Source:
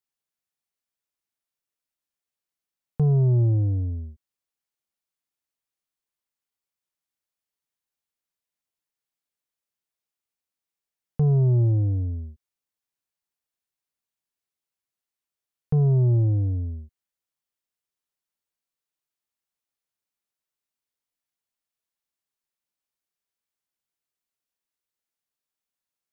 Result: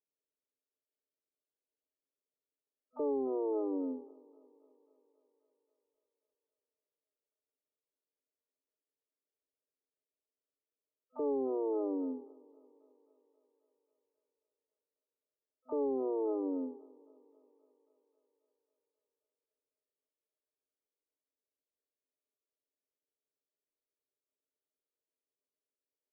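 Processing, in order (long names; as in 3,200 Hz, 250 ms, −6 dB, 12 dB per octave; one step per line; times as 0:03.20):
stylus tracing distortion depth 0.43 ms
brick-wall band-pass 250–640 Hz
dynamic equaliser 410 Hz, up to +5 dB, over −47 dBFS, Q 4.8
comb filter 4.6 ms, depth 52%
brickwall limiter −30.5 dBFS, peak gain reduction 11.5 dB
feedback echo with a high-pass in the loop 268 ms, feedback 78%, high-pass 320 Hz, level −21.5 dB
pitch-shifted copies added +12 semitones −14 dB
level +3 dB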